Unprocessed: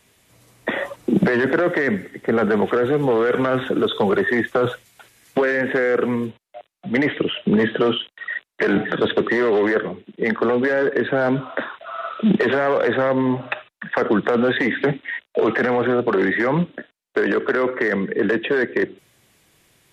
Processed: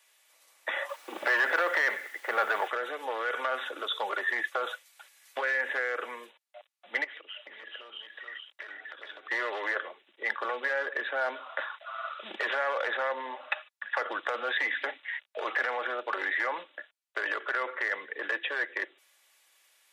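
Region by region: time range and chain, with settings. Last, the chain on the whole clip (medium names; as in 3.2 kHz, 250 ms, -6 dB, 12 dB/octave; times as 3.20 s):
0.89–2.68 s: overdrive pedal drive 16 dB, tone 1.8 kHz, clips at -5.5 dBFS + word length cut 8-bit, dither none
7.04–9.31 s: compression 8:1, threshold -32 dBFS + delay 429 ms -3.5 dB
whole clip: Bessel high-pass 900 Hz, order 4; comb 3.5 ms, depth 34%; trim -5.5 dB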